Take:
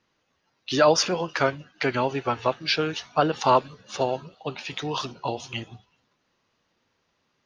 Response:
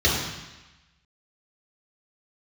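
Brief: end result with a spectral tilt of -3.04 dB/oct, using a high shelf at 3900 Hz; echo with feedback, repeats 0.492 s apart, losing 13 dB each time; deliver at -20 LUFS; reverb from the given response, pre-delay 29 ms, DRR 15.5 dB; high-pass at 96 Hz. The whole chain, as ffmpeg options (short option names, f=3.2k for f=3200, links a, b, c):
-filter_complex "[0:a]highpass=96,highshelf=f=3.9k:g=7,aecho=1:1:492|984|1476:0.224|0.0493|0.0108,asplit=2[a][b];[1:a]atrim=start_sample=2205,adelay=29[c];[b][c]afir=irnorm=-1:irlink=0,volume=-33dB[d];[a][d]amix=inputs=2:normalize=0,volume=4dB"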